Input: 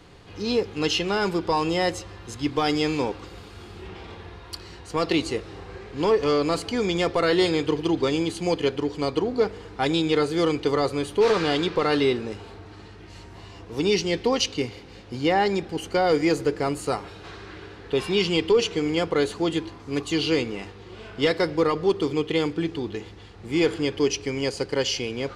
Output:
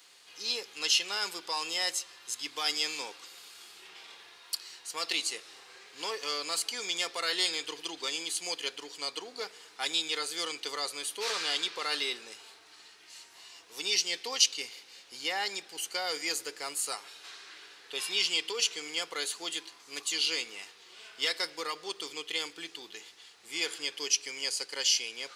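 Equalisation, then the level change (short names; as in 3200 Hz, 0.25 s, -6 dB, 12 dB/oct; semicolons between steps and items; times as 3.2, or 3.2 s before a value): HPF 180 Hz 6 dB/oct; differentiator; low shelf 270 Hz -4 dB; +6.0 dB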